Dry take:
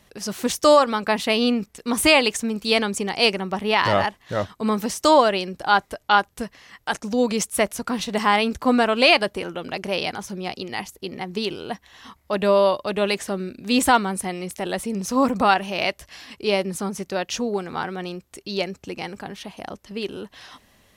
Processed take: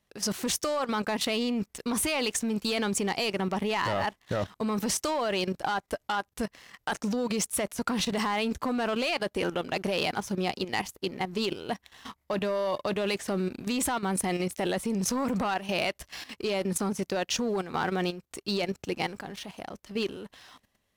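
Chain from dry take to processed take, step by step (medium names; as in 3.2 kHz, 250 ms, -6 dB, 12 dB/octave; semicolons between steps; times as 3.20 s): compression 10:1, threshold -20 dBFS, peak gain reduction 11 dB; waveshaping leveller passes 2; level held to a coarse grid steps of 12 dB; trim -4 dB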